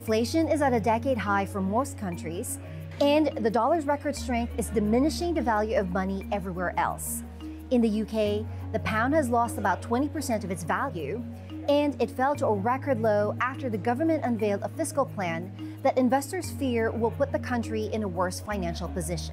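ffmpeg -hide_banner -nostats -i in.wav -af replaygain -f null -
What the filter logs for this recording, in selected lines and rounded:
track_gain = +7.4 dB
track_peak = 0.143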